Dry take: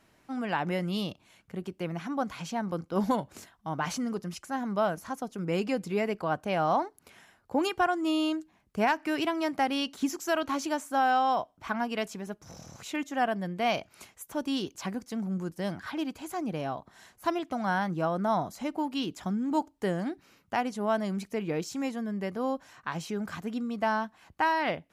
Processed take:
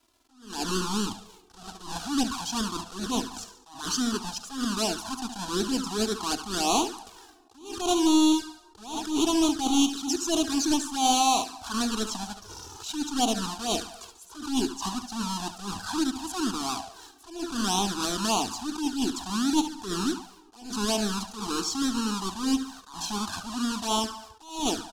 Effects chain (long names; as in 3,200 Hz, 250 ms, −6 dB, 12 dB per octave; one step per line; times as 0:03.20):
each half-wave held at its own peak
low-pass filter 6,500 Hz 12 dB per octave
high-shelf EQ 2,300 Hz +11 dB
in parallel at +1.5 dB: brickwall limiter −21 dBFS, peak gain reduction 14.5 dB
on the sum: phaser with its sweep stopped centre 560 Hz, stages 6
far-end echo of a speakerphone 80 ms, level −13 dB
dead-zone distortion −52.5 dBFS
repeating echo 71 ms, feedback 52%, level −12 dB
on a send at −22 dB: convolution reverb RT60 2.2 s, pre-delay 4 ms
on the sum: flanger swept by the level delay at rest 3 ms, full sweep at −17 dBFS
level that may rise only so fast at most 110 dB per second